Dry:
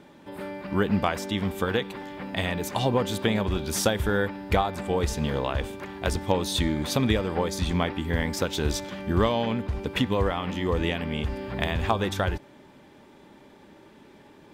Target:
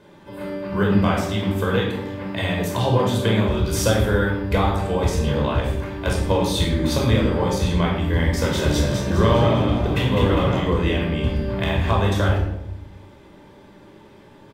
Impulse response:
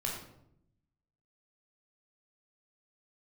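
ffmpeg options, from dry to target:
-filter_complex "[0:a]asplit=3[link_01][link_02][link_03];[link_01]afade=type=out:start_time=8.41:duration=0.02[link_04];[link_02]asplit=7[link_05][link_06][link_07][link_08][link_09][link_10][link_11];[link_06]adelay=203,afreqshift=62,volume=-5dB[link_12];[link_07]adelay=406,afreqshift=124,volume=-11.4dB[link_13];[link_08]adelay=609,afreqshift=186,volume=-17.8dB[link_14];[link_09]adelay=812,afreqshift=248,volume=-24.1dB[link_15];[link_10]adelay=1015,afreqshift=310,volume=-30.5dB[link_16];[link_11]adelay=1218,afreqshift=372,volume=-36.9dB[link_17];[link_05][link_12][link_13][link_14][link_15][link_16][link_17]amix=inputs=7:normalize=0,afade=type=in:start_time=8.41:duration=0.02,afade=type=out:start_time=10.58:duration=0.02[link_18];[link_03]afade=type=in:start_time=10.58:duration=0.02[link_19];[link_04][link_18][link_19]amix=inputs=3:normalize=0[link_20];[1:a]atrim=start_sample=2205,asetrate=38808,aresample=44100[link_21];[link_20][link_21]afir=irnorm=-1:irlink=0"

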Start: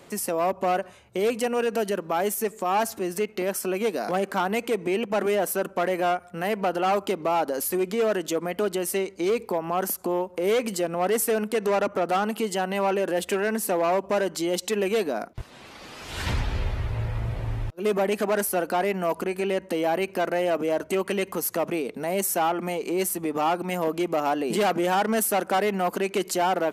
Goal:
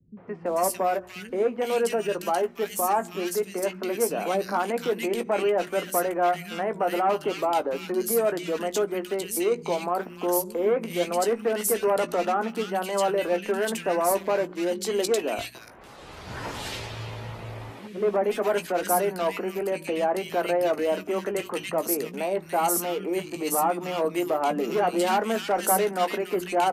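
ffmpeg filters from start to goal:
ffmpeg -i in.wav -filter_complex "[0:a]bandreject=frequency=60:width_type=h:width=6,bandreject=frequency=120:width_type=h:width=6,bandreject=frequency=180:width_type=h:width=6,bandreject=frequency=240:width_type=h:width=6,bandreject=frequency=300:width_type=h:width=6,bandreject=frequency=360:width_type=h:width=6,acrossover=split=140[link_01][link_02];[link_01]acompressor=threshold=-50dB:ratio=6[link_03];[link_03][link_02]amix=inputs=2:normalize=0,asplit=2[link_04][link_05];[link_05]adelay=17,volume=-10dB[link_06];[link_04][link_06]amix=inputs=2:normalize=0,acrossover=split=200|1900[link_07][link_08][link_09];[link_08]adelay=170[link_10];[link_09]adelay=460[link_11];[link_07][link_10][link_11]amix=inputs=3:normalize=0" out.wav

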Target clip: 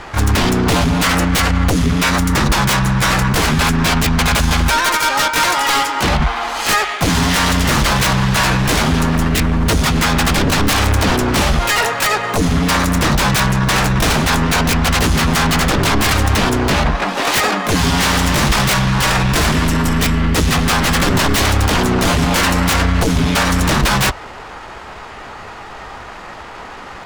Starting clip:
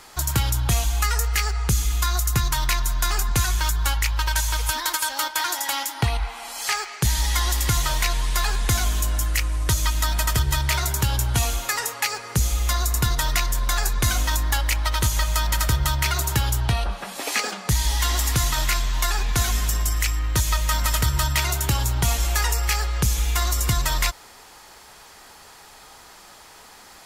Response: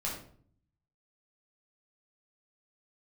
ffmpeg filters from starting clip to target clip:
-filter_complex "[0:a]adynamicsmooth=sensitivity=2:basefreq=1900,aeval=exprs='0.237*sin(PI/2*4.47*val(0)/0.237)':channel_layout=same,asplit=2[link_01][link_02];[link_02]asetrate=66075,aresample=44100,atempo=0.66742,volume=-3dB[link_03];[link_01][link_03]amix=inputs=2:normalize=0"

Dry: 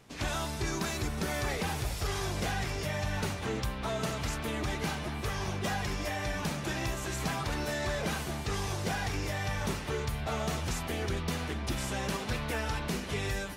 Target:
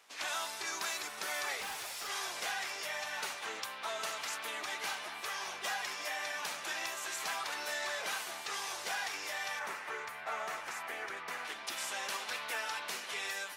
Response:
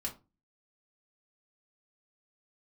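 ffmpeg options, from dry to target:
-filter_complex "[0:a]highpass=890,asettb=1/sr,asplit=3[link_01][link_02][link_03];[link_01]atrim=end=1.604[link_04];[link_02]atrim=start=1.6:end=2.1,asetpts=PTS-STARTPTS,afade=type=in:duration=0.004:curve=qsin,afade=type=out:start_time=0.496:duration=0.004:curve=qsin,asoftclip=type=hard:threshold=-37.5dB[link_05];[link_03]atrim=start=2.096[link_06];[link_04][link_05]acrossfade=duration=0.004:curve1=hsin:curve2=qsin[link_07];[link_07][link_06]acrossfade=duration=0.004:curve1=qsin:curve2=hsin,asettb=1/sr,asplit=3[link_08][link_09][link_10];[link_08]atrim=end=9.594[link_11];[link_09]atrim=start=9.59:end=11.45,asetpts=PTS-STARTPTS,afade=type=in:duration=0.004:curve=qsin,afade=type=out:start_time=1.856:duration=0.004:curve=qsin,highshelf=frequency=2600:width_type=q:width=1.5:gain=-7.5[link_12];[link_10]atrim=start=11.446[link_13];[link_11][link_12]acrossfade=duration=0.004:curve1=hsin:curve2=qsin[link_14];[link_14][link_13]acrossfade=duration=0.004:curve1=qsin:curve2=hsin"

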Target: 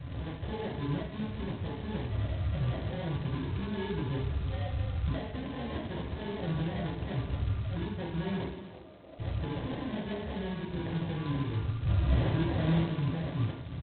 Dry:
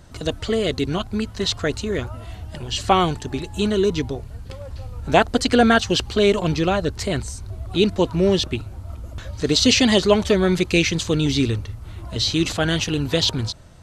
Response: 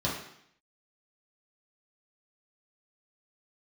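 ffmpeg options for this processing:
-filter_complex "[0:a]asettb=1/sr,asplit=3[link_01][link_02][link_03];[link_01]atrim=end=0.594[link_04];[link_02]atrim=start=0.59:end=1.23,asetpts=PTS-STARTPTS,afade=type=in:duration=0.004:curve=qsin,afade=type=out:start_time=0.636:duration=0.004:curve=qsin,agate=range=-46dB:threshold=-26dB:ratio=16:detection=peak[link_05];[link_03]atrim=start=1.226[link_06];[link_04][link_05]acrossfade=duration=0.004:curve1=hsin:curve2=qsin[link_07];[link_07][link_06]acrossfade=duration=0.004:curve1=qsin:curve2=hsin,acompressor=threshold=-32dB:ratio=8,alimiter=level_in=6.5dB:limit=-24dB:level=0:latency=1:release=199,volume=-6.5dB,asplit=3[link_08][link_09][link_10];[link_08]afade=type=out:start_time=11.83:duration=0.02[link_11];[link_09]acontrast=29,afade=type=in:start_time=11.83:duration=0.02,afade=type=out:start_time=12.8:duration=0.02[link_12];[link_10]afade=type=in:start_time=12.8:duration=0.02[link_13];[link_11][link_12][link_13]amix=inputs=3:normalize=0,flanger=delay=8:depth=5.4:regen=-58:speed=1.7:shape=sinusoidal,acrusher=samples=34:mix=1:aa=0.000001,asplit=3[link_14][link_15][link_16];[link_14]afade=type=out:start_time=8.49:duration=0.02[link_17];[link_15]asuperpass=centerf=510:order=4:qfactor=1,afade=type=in:start_time=8.49:duration=0.02,afade=type=out:start_time=9.18:duration=0.02[link_18];[link_16]afade=type=in:start_time=9.18:duration=0.02[link_19];[link_17][link_18][link_19]amix=inputs=3:normalize=0,aecho=1:1:302|604:0.2|0.0439[link_20];[1:a]atrim=start_sample=2205[link_21];[link_20][link_21]afir=irnorm=-1:irlink=0,volume=-3.5dB" -ar 8000 -c:a adpcm_g726 -b:a 16k

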